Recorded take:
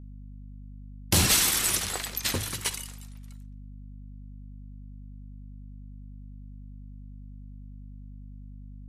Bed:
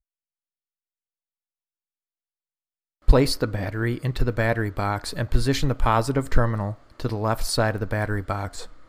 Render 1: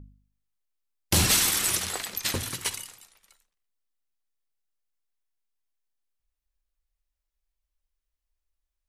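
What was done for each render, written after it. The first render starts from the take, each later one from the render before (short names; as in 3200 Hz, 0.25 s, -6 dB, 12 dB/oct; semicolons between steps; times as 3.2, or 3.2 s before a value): de-hum 50 Hz, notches 5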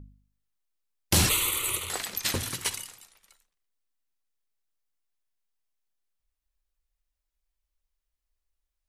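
1.29–1.9 fixed phaser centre 1100 Hz, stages 8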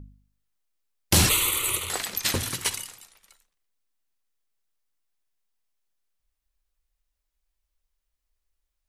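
gain +3 dB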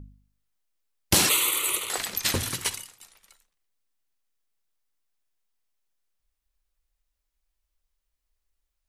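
1.14–1.98 HPF 260 Hz; 2.58–3 fade out, to -11 dB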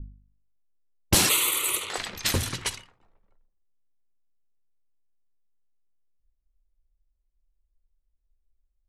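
low-pass opened by the level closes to 500 Hz, open at -23 dBFS; low shelf 72 Hz +9 dB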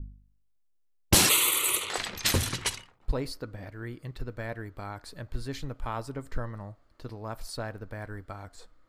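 add bed -14 dB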